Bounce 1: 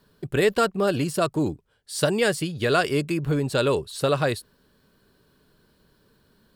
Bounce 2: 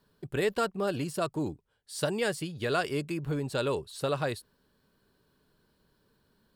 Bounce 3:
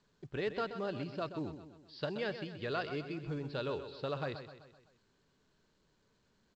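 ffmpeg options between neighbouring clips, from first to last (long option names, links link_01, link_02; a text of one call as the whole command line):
ffmpeg -i in.wav -af "equalizer=frequency=880:width_type=o:width=0.4:gain=3,volume=-8dB" out.wav
ffmpeg -i in.wav -filter_complex "[0:a]aresample=11025,aresample=44100,asplit=2[link_01][link_02];[link_02]aecho=0:1:128|256|384|512|640:0.299|0.149|0.0746|0.0373|0.0187[link_03];[link_01][link_03]amix=inputs=2:normalize=0,volume=-8dB" -ar 16000 -c:a pcm_mulaw out.wav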